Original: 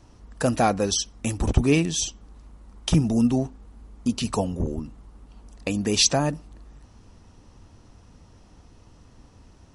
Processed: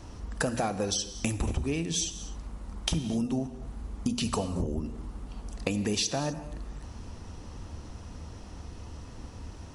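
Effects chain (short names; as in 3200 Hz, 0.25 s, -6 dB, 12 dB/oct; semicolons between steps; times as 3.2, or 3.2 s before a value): bell 71 Hz +8.5 dB 0.22 oct; notches 60/120/180/240 Hz; compressor 16:1, threshold -33 dBFS, peak gain reduction 22 dB; in parallel at -7 dB: soft clip -25.5 dBFS, distortion -21 dB; on the sum: non-linear reverb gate 0.28 s flat, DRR 11 dB; gain +4 dB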